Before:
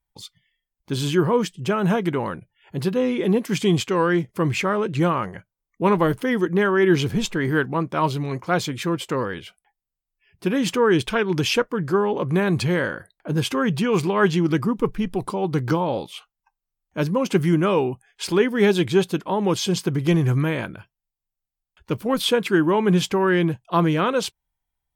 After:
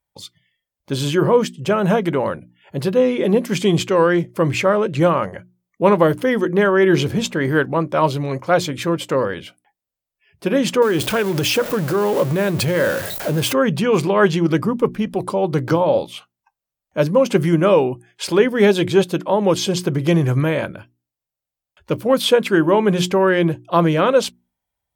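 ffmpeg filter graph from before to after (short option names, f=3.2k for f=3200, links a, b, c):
-filter_complex "[0:a]asettb=1/sr,asplit=3[a][b][c];[a]atrim=end=10.824[d];[b]atrim=start=10.82:end=13.53,asetpts=PTS-STARTPTS,afade=t=in:d=0.004:c=qsin,afade=t=out:st=2.706:d=0.004:c=qsin,aeval=exprs='val(0)+0.5*0.0422*sgn(val(0))':c=same,highshelf=f=11k:g=11.5,acompressor=threshold=-19dB:ratio=3:attack=3.2:release=140:knee=1:detection=peak[e];[c]atrim=start=13.526[f];[d][e]acrossfade=d=0.004:c1=hsin:c2=qsin[g];[g][f]acrossfade=d=0.004:c1=qsin:c2=hsin,highpass=61,equalizer=f=570:t=o:w=0.37:g=9,bandreject=f=60:t=h:w=6,bandreject=f=120:t=h:w=6,bandreject=f=180:t=h:w=6,bandreject=f=240:t=h:w=6,bandreject=f=300:t=h:w=6,bandreject=f=360:t=h:w=6,volume=3dB"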